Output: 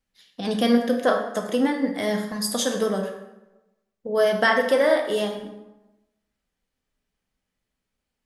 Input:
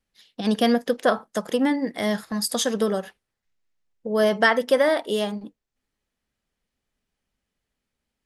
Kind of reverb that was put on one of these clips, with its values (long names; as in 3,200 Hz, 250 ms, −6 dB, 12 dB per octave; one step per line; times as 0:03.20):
dense smooth reverb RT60 1 s, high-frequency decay 0.65×, DRR 2.5 dB
level −2 dB